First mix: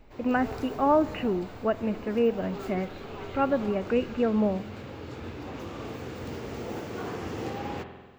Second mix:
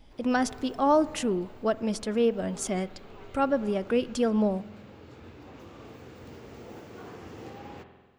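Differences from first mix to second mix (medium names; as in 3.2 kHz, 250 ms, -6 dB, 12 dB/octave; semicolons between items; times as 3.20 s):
speech: remove brick-wall FIR low-pass 3 kHz; background -9.0 dB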